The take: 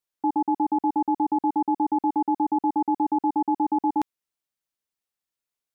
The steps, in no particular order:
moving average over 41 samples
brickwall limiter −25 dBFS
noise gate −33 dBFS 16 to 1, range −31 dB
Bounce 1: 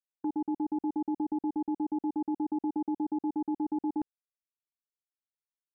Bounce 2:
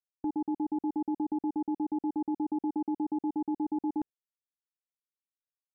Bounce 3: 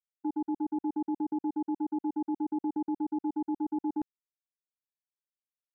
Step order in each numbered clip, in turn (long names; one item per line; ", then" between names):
moving average, then noise gate, then brickwall limiter
noise gate, then moving average, then brickwall limiter
moving average, then brickwall limiter, then noise gate